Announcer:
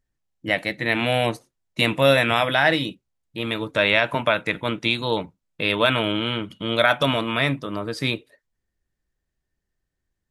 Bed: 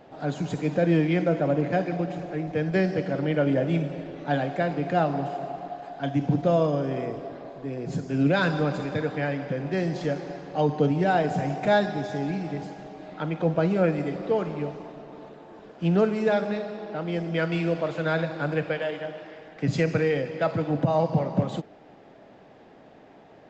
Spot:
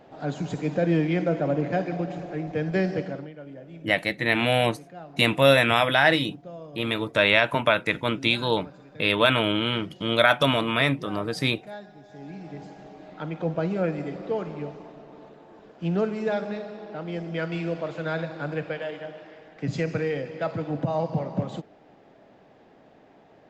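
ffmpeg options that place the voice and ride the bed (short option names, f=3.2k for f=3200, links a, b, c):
-filter_complex "[0:a]adelay=3400,volume=-0.5dB[a];[1:a]volume=14.5dB,afade=t=out:st=2.97:d=0.34:silence=0.125893,afade=t=in:st=12.05:d=0.84:silence=0.16788[b];[a][b]amix=inputs=2:normalize=0"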